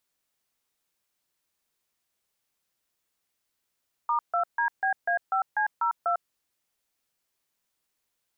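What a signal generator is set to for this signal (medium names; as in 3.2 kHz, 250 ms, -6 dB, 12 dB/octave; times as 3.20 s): DTMF "*2DBA5C02", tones 100 ms, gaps 146 ms, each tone -25 dBFS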